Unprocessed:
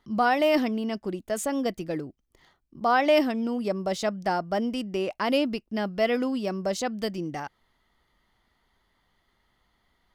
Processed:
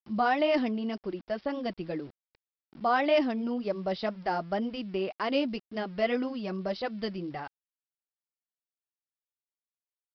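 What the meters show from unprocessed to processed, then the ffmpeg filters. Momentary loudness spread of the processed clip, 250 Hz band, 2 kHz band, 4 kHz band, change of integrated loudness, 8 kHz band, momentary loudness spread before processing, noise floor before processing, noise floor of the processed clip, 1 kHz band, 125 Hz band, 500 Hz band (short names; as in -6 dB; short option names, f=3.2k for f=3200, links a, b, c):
11 LU, -4.0 dB, -4.0 dB, -4.0 dB, -4.0 dB, under -25 dB, 11 LU, -72 dBFS, under -85 dBFS, -3.5 dB, -4.0 dB, -4.0 dB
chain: -af "flanger=delay=1.5:depth=4.6:regen=-40:speed=1.9:shape=triangular,aresample=11025,aeval=exprs='val(0)*gte(abs(val(0)),0.00266)':c=same,aresample=44100"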